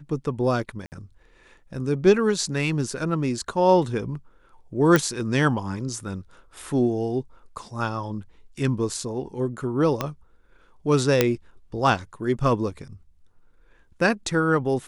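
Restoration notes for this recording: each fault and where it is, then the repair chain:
0.86–0.92 gap 59 ms
4.96 pop -6 dBFS
10.01 pop -10 dBFS
11.21 pop -2 dBFS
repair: de-click; interpolate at 0.86, 59 ms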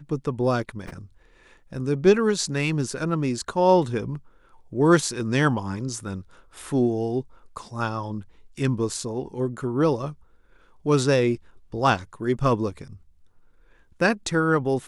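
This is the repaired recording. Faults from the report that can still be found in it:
10.01 pop

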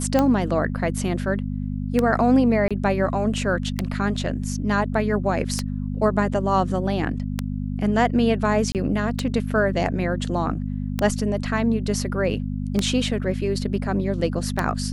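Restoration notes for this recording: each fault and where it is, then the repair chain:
hum 50 Hz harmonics 5 -27 dBFS
tick 33 1/3 rpm -7 dBFS
2.68–2.71 gap 26 ms
8.72–8.75 gap 28 ms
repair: de-click; de-hum 50 Hz, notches 5; interpolate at 2.68, 26 ms; interpolate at 8.72, 28 ms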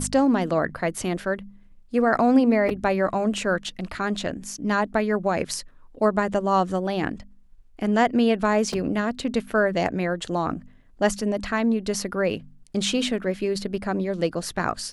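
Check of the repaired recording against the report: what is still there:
none

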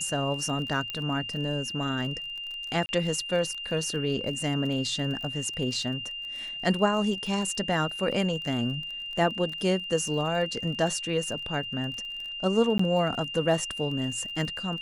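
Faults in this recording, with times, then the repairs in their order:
crackle 24/s -35 dBFS
tone 2800 Hz -34 dBFS
0.9 pop -18 dBFS
2.86–2.89 gap 30 ms
12.78–12.79 gap 14 ms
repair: de-click; notch 2800 Hz, Q 30; interpolate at 2.86, 30 ms; interpolate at 12.78, 14 ms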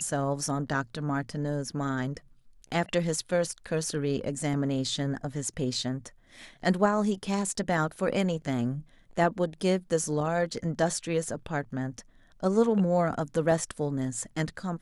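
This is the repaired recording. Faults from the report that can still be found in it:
0.9 pop

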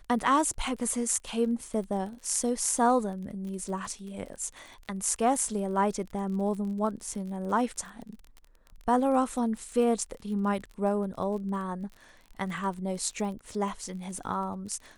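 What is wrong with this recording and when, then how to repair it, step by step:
crackle 36/s -38 dBFS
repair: de-click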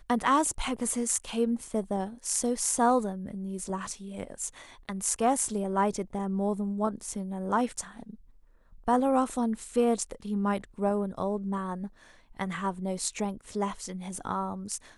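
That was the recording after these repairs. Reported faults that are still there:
none

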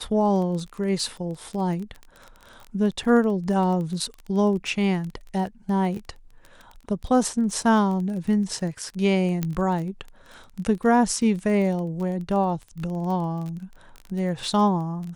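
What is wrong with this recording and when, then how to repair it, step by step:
crackle 22/s -31 dBFS
9.43 pop -12 dBFS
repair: de-click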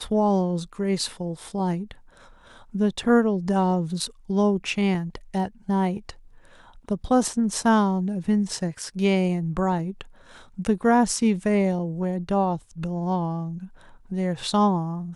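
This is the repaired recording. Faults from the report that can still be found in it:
none

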